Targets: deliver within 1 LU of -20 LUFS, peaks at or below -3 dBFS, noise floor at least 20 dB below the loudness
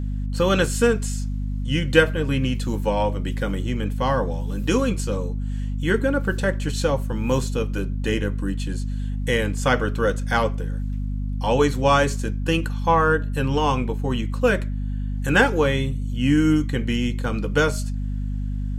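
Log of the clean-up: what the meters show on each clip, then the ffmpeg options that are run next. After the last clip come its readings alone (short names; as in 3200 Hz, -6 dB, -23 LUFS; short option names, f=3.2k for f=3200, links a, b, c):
hum 50 Hz; harmonics up to 250 Hz; hum level -23 dBFS; loudness -23.0 LUFS; peak -2.5 dBFS; loudness target -20.0 LUFS
-> -af "bandreject=f=50:t=h:w=4,bandreject=f=100:t=h:w=4,bandreject=f=150:t=h:w=4,bandreject=f=200:t=h:w=4,bandreject=f=250:t=h:w=4"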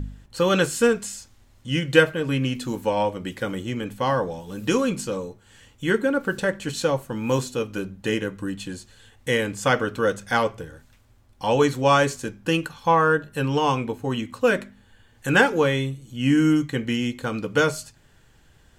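hum none; loudness -23.5 LUFS; peak -1.5 dBFS; loudness target -20.0 LUFS
-> -af "volume=3.5dB,alimiter=limit=-3dB:level=0:latency=1"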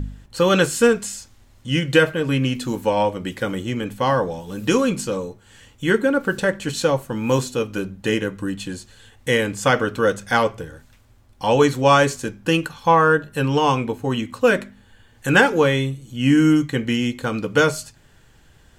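loudness -20.0 LUFS; peak -3.0 dBFS; noise floor -53 dBFS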